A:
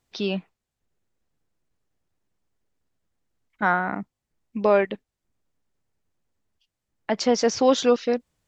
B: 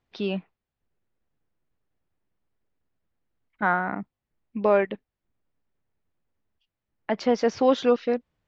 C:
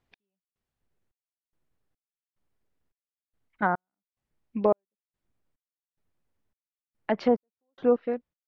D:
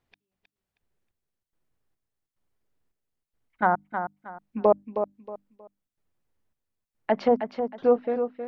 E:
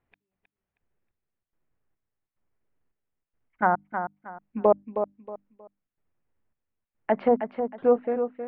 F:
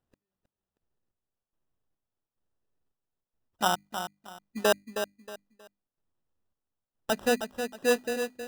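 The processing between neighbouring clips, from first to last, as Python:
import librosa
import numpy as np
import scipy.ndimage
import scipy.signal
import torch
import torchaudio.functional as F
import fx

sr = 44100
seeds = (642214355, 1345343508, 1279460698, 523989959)

y1 = scipy.signal.sosfilt(scipy.signal.butter(2, 3100.0, 'lowpass', fs=sr, output='sos'), x)
y1 = F.gain(torch.from_numpy(y1), -1.5).numpy()
y2 = fx.fade_out_tail(y1, sr, length_s=0.63)
y2 = fx.env_lowpass_down(y2, sr, base_hz=950.0, full_db=-19.5)
y2 = fx.step_gate(y2, sr, bpm=108, pattern='x...xxxx...xx', floor_db=-60.0, edge_ms=4.5)
y3 = fx.hum_notches(y2, sr, base_hz=50, count=6)
y3 = fx.dynamic_eq(y3, sr, hz=780.0, q=1.2, threshold_db=-38.0, ratio=4.0, max_db=5)
y3 = fx.echo_feedback(y3, sr, ms=316, feedback_pct=27, wet_db=-8)
y4 = scipy.signal.sosfilt(scipy.signal.butter(4, 2600.0, 'lowpass', fs=sr, output='sos'), y3)
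y5 = fx.sample_hold(y4, sr, seeds[0], rate_hz=2200.0, jitter_pct=0)
y5 = F.gain(torch.from_numpy(y5), -4.5).numpy()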